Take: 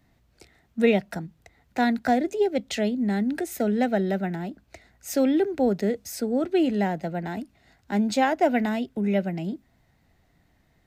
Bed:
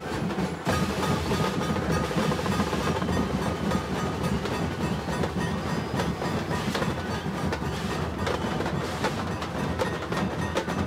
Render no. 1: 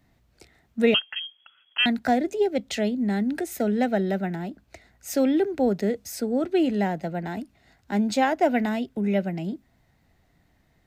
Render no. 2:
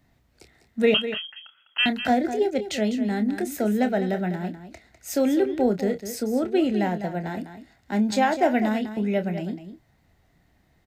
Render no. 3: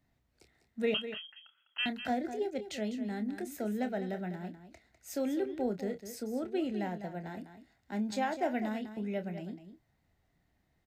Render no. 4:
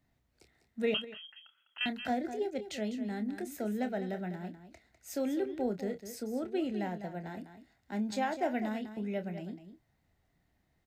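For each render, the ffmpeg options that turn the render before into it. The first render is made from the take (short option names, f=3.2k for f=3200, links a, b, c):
-filter_complex "[0:a]asettb=1/sr,asplit=3[a][b][c];[a]atrim=end=0.944[d];[b]atrim=start=0.94:end=1.86,asetpts=PTS-STARTPTS,afade=t=in:d=0.004:c=qsin,afade=t=out:st=0.916:d=0.004:c=qsin,lowpass=f=2.9k:t=q:w=0.5098,lowpass=f=2.9k:t=q:w=0.6013,lowpass=f=2.9k:t=q:w=0.9,lowpass=f=2.9k:t=q:w=2.563,afreqshift=-3400[e];[c]atrim=start=1.856[f];[d][e]acrossfade=d=0.004:c1=hsin:c2=qsin[g];[g][f]acrossfade=d=0.004:c1=qsin:c2=hsin"
-filter_complex "[0:a]asplit=2[a][b];[b]adelay=28,volume=-10dB[c];[a][c]amix=inputs=2:normalize=0,asplit=2[d][e];[e]aecho=0:1:201:0.282[f];[d][f]amix=inputs=2:normalize=0"
-af "volume=-11.5dB"
-filter_complex "[0:a]asettb=1/sr,asplit=3[a][b][c];[a]atrim=end=1.044[d];[b]atrim=start=1.04:end=1.81,asetpts=PTS-STARTPTS,afade=t=in:d=0.004:c=qsin,afade=t=out:st=0.766:d=0.004:c=qsin,acompressor=threshold=-43dB:ratio=6:attack=3.2:release=140:knee=1:detection=peak[e];[c]atrim=start=1.806[f];[d][e]acrossfade=d=0.004:c1=hsin:c2=qsin[g];[g][f]acrossfade=d=0.004:c1=qsin:c2=hsin"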